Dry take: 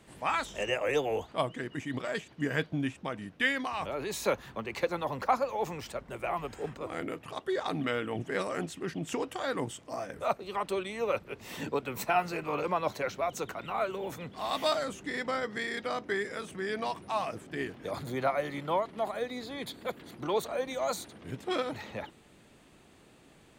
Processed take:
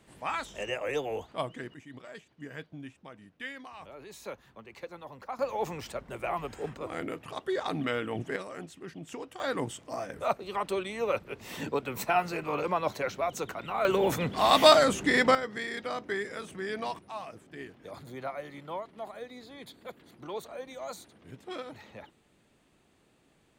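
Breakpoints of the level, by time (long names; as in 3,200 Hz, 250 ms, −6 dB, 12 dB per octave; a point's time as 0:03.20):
−3 dB
from 0:01.74 −12 dB
from 0:05.39 +0.5 dB
from 0:08.36 −7.5 dB
from 0:09.40 +1 dB
from 0:13.85 +11 dB
from 0:15.35 −1 dB
from 0:16.99 −8 dB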